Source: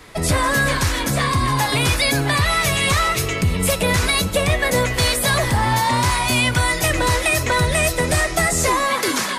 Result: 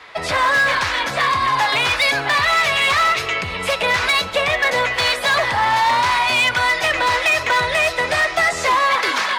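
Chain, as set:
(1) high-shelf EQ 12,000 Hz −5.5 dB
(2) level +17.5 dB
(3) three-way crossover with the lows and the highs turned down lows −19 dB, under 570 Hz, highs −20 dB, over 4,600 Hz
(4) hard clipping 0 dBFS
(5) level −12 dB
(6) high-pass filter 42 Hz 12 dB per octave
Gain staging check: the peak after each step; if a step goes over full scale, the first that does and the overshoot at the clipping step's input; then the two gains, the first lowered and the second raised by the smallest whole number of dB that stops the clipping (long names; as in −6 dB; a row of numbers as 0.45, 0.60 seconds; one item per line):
−10.0, +7.5, +8.0, 0.0, −12.0, −10.5 dBFS
step 2, 8.0 dB
step 2 +9.5 dB, step 5 −4 dB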